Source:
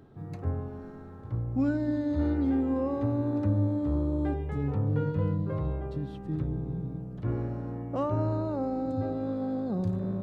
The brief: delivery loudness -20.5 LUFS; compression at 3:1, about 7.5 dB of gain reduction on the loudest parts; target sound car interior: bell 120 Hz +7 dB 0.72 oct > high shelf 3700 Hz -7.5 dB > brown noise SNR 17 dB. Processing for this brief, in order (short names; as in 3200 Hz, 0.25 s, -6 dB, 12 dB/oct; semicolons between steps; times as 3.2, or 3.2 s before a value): compressor 3:1, threshold -33 dBFS; bell 120 Hz +7 dB 0.72 oct; high shelf 3700 Hz -7.5 dB; brown noise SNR 17 dB; gain +13 dB